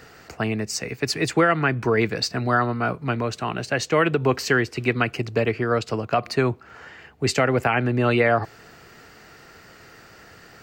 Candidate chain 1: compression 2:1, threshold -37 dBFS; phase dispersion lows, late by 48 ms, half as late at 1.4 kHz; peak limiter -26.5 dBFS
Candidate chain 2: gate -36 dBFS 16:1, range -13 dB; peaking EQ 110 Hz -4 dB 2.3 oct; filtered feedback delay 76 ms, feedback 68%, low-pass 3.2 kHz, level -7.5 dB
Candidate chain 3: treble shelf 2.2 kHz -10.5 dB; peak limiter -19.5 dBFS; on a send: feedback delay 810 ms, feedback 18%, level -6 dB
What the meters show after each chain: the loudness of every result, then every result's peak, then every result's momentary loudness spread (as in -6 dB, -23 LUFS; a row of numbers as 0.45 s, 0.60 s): -37.0 LUFS, -22.5 LUFS, -29.5 LUFS; -26.5 dBFS, -6.5 dBFS, -16.0 dBFS; 12 LU, 9 LU, 18 LU